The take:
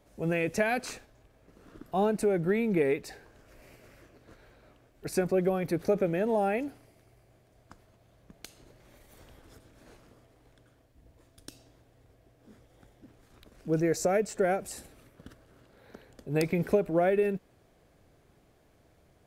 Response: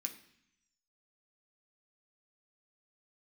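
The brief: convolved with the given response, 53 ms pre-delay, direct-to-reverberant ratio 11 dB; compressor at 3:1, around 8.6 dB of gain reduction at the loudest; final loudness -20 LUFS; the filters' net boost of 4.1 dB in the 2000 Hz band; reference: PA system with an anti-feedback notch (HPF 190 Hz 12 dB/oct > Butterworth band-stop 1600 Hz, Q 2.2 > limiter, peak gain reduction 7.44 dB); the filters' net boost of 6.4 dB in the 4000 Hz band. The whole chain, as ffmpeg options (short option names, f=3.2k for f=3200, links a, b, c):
-filter_complex "[0:a]equalizer=f=2k:t=o:g=8,equalizer=f=4k:t=o:g=6,acompressor=threshold=-32dB:ratio=3,asplit=2[a][b];[1:a]atrim=start_sample=2205,adelay=53[c];[b][c]afir=irnorm=-1:irlink=0,volume=-8.5dB[d];[a][d]amix=inputs=2:normalize=0,highpass=190,asuperstop=centerf=1600:order=8:qfactor=2.2,volume=18.5dB,alimiter=limit=-9.5dB:level=0:latency=1"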